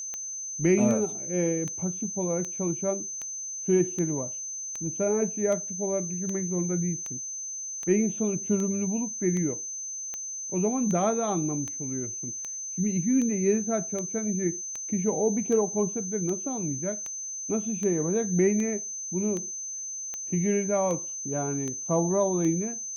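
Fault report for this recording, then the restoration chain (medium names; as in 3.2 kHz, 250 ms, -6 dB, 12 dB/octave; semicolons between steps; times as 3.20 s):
tick 78 rpm -21 dBFS
whine 6.2 kHz -33 dBFS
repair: de-click; band-stop 6.2 kHz, Q 30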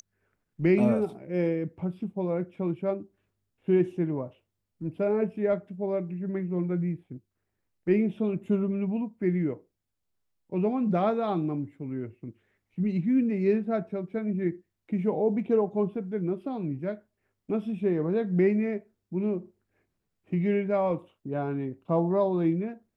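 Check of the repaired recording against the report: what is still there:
nothing left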